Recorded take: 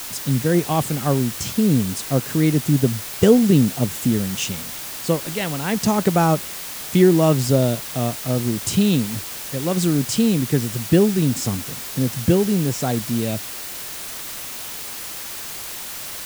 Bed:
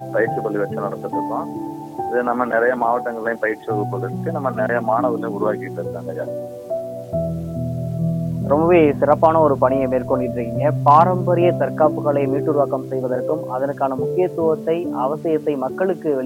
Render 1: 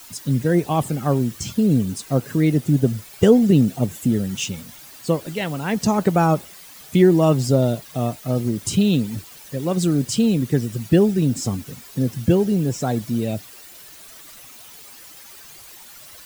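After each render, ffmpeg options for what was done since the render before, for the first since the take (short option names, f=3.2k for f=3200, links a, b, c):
-af "afftdn=nr=13:nf=-32"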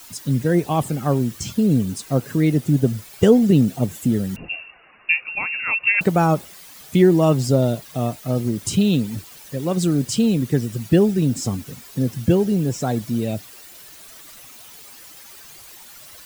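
-filter_complex "[0:a]asettb=1/sr,asplit=3[a][b][c];[a]atrim=end=4.364[d];[b]atrim=start=4.36:end=6.01,asetpts=PTS-STARTPTS,afade=t=in:d=0.004:c=qsin,afade=t=out:st=1.646:d=0.004:c=qsin,lowpass=f=2.5k:t=q:w=0.5098,lowpass=f=2.5k:t=q:w=0.6013,lowpass=f=2.5k:t=q:w=0.9,lowpass=f=2.5k:t=q:w=2.563,afreqshift=-2900[e];[c]atrim=start=6.006[f];[d][e]acrossfade=d=0.004:c1=hsin:c2=qsin[g];[g][f]acrossfade=d=0.004:c1=qsin:c2=hsin"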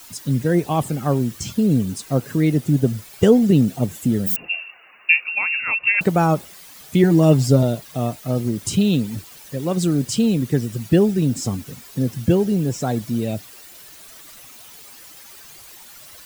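-filter_complex "[0:a]asplit=3[a][b][c];[a]afade=t=out:st=4.26:d=0.02[d];[b]aemphasis=mode=production:type=riaa,afade=t=in:st=4.26:d=0.02,afade=t=out:st=5.59:d=0.02[e];[c]afade=t=in:st=5.59:d=0.02[f];[d][e][f]amix=inputs=3:normalize=0,asettb=1/sr,asplit=3[g][h][i];[g]atrim=end=7.034[j];[h]atrim=start=7.03:end=7.63,asetpts=PTS-STARTPTS,afade=t=in:d=0.004:c=qsin,afade=t=out:st=0.596:d=0.004:c=qsin,aecho=1:1:6.8:0.65,atrim=end_sample=26460[k];[i]atrim=start=7.626[l];[j][k]acrossfade=d=0.004:c1=hsin:c2=qsin[m];[m][l]acrossfade=d=0.004:c1=qsin:c2=hsin"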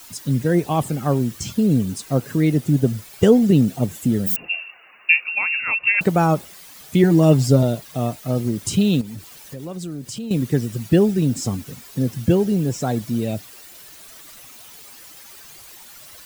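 -filter_complex "[0:a]asettb=1/sr,asplit=3[a][b][c];[a]atrim=end=9.014[d];[b]atrim=start=9.01:end=10.31,asetpts=PTS-STARTPTS,afade=t=in:d=0.004:c=qsin,afade=t=out:st=1.296:d=0.004:c=qsin,acompressor=threshold=-31dB:ratio=3:attack=3.2:release=140:knee=1:detection=peak[e];[c]atrim=start=10.306[f];[d][e]acrossfade=d=0.004:c1=hsin:c2=qsin[g];[g][f]acrossfade=d=0.004:c1=qsin:c2=hsin"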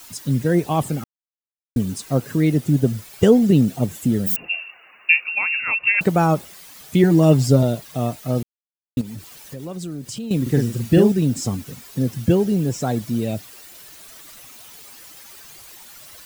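-filter_complex "[0:a]asettb=1/sr,asplit=3[a][b][c];[a]atrim=end=10.424[d];[b]atrim=start=10.42:end=11.12,asetpts=PTS-STARTPTS,afade=t=in:d=0.004:c=qsin,afade=t=out:st=0.696:d=0.004:c=qsin,asplit=2[e][f];[f]adelay=43,volume=-4dB[g];[e][g]amix=inputs=2:normalize=0,atrim=end_sample=30870[h];[c]atrim=start=11.116[i];[d][h]acrossfade=d=0.004:c1=hsin:c2=qsin[j];[j][i]acrossfade=d=0.004:c1=qsin:c2=hsin,asplit=5[k][l][m][n][o];[k]atrim=end=1.04,asetpts=PTS-STARTPTS,afade=t=out:st=1.036:d=0.004:c=hsin[p];[l]atrim=start=1.04:end=1.76,asetpts=PTS-STARTPTS,volume=0[q];[m]atrim=start=1.76:end=8.43,asetpts=PTS-STARTPTS,afade=t=in:d=0.004:c=hsin,afade=t=out:st=6.666:d=0.004:c=hsin[r];[n]atrim=start=8.43:end=8.97,asetpts=PTS-STARTPTS,volume=0[s];[o]atrim=start=8.97,asetpts=PTS-STARTPTS,afade=t=in:d=0.004:c=hsin[t];[p][q][r][s][t]concat=n=5:v=0:a=1"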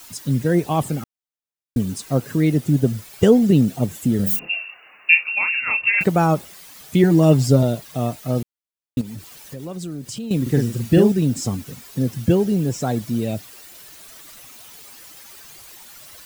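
-filter_complex "[0:a]asettb=1/sr,asplit=3[a][b][c];[a]atrim=end=4.164[d];[b]atrim=start=4.16:end=6.04,asetpts=PTS-STARTPTS,afade=t=in:d=0.004:c=qsin,afade=t=out:st=1.876:d=0.004:c=qsin,asplit=2[e][f];[f]adelay=30,volume=-6dB[g];[e][g]amix=inputs=2:normalize=0,atrim=end_sample=82908[h];[c]atrim=start=6.036[i];[d][h]acrossfade=d=0.004:c1=hsin:c2=qsin[j];[j][i]acrossfade=d=0.004:c1=qsin:c2=hsin"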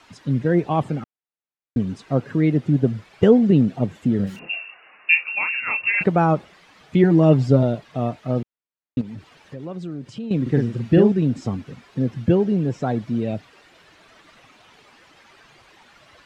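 -af "lowpass=2.6k,lowshelf=f=64:g=-8"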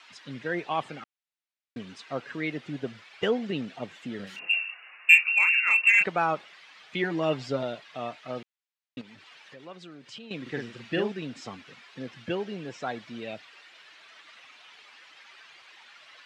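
-filter_complex "[0:a]bandpass=f=2.9k:t=q:w=0.79:csg=0,asplit=2[a][b];[b]asoftclip=type=hard:threshold=-19.5dB,volume=-8dB[c];[a][c]amix=inputs=2:normalize=0"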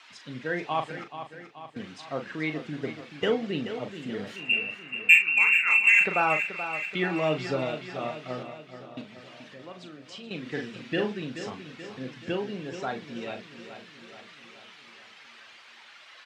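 -filter_complex "[0:a]asplit=2[a][b];[b]adelay=39,volume=-8dB[c];[a][c]amix=inputs=2:normalize=0,aecho=1:1:430|860|1290|1720|2150|2580:0.299|0.167|0.0936|0.0524|0.0294|0.0164"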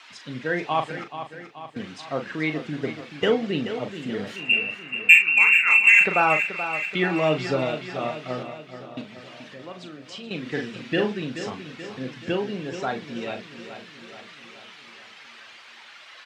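-af "volume=4.5dB,alimiter=limit=-1dB:level=0:latency=1"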